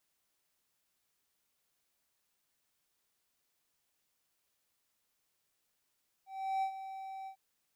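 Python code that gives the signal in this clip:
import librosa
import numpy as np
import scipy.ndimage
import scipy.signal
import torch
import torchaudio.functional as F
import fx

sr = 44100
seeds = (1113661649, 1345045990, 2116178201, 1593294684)

y = fx.adsr_tone(sr, wave='triangle', hz=771.0, attack_ms=363.0, decay_ms=86.0, sustain_db=-12.0, held_s=1.01, release_ms=88.0, level_db=-27.5)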